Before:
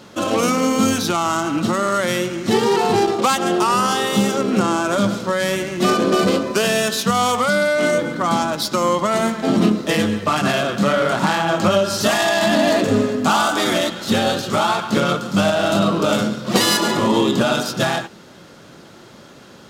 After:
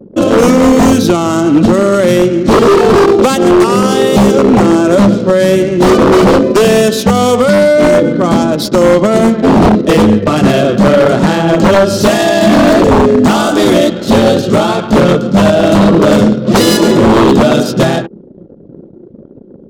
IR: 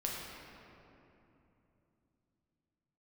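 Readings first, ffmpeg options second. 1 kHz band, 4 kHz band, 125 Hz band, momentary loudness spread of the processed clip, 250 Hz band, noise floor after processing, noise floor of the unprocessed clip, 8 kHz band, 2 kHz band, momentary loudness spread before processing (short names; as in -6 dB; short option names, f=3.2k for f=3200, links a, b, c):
+6.0 dB, +3.5 dB, +11.5 dB, 3 LU, +11.5 dB, -35 dBFS, -43 dBFS, +3.5 dB, +4.5 dB, 4 LU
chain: -af "lowshelf=f=670:t=q:w=1.5:g=9,aeval=exprs='0.562*(abs(mod(val(0)/0.562+3,4)-2)-1)':c=same,anlmdn=63.1,volume=4dB"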